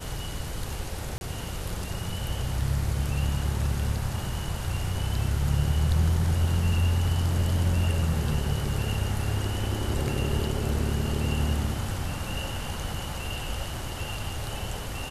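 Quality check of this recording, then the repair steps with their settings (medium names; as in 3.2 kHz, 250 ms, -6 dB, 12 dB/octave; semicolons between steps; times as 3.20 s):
1.18–1.21 s: dropout 31 ms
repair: interpolate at 1.18 s, 31 ms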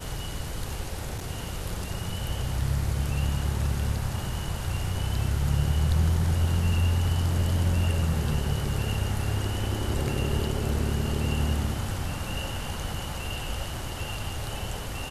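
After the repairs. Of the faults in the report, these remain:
nothing left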